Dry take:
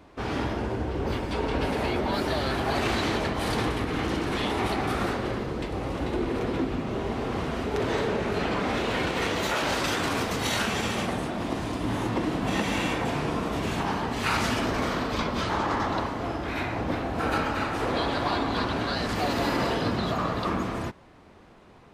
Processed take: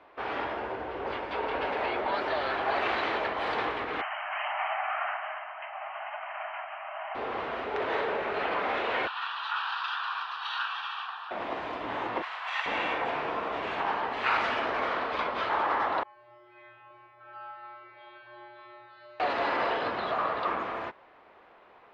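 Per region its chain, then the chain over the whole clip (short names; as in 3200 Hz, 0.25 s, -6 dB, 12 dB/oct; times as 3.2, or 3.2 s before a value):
4.01–7.15 brick-wall FIR band-pass 590–3200 Hz + bell 960 Hz -3 dB 0.31 oct
9.07–11.31 HPF 910 Hz 24 dB/oct + fixed phaser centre 2100 Hz, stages 6
12.22–12.66 HPF 950 Hz 24 dB/oct + high shelf 4300 Hz +6 dB
16.03–19.2 air absorption 110 m + resonator 120 Hz, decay 1.4 s, harmonics odd, mix 100%
whole clip: Bessel low-pass 4800 Hz, order 2; three-band isolator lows -22 dB, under 450 Hz, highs -22 dB, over 3500 Hz; gain +1.5 dB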